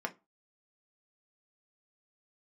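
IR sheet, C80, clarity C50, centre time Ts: 29.0 dB, 20.5 dB, 5 ms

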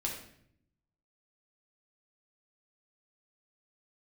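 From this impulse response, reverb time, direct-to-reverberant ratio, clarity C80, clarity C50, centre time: 0.65 s, −2.0 dB, 8.0 dB, 5.0 dB, 33 ms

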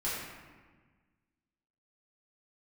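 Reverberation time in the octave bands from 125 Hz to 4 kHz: 1.9, 1.9, 1.5, 1.4, 1.4, 0.90 seconds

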